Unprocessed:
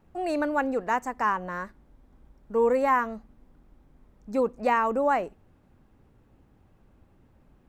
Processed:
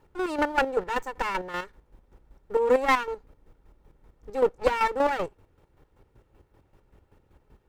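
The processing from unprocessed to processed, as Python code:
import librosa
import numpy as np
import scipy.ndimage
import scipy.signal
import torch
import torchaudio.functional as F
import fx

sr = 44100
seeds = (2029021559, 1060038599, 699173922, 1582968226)

y = fx.lower_of_two(x, sr, delay_ms=2.2)
y = fx.chopper(y, sr, hz=5.2, depth_pct=60, duty_pct=35)
y = y * librosa.db_to_amplitude(4.5)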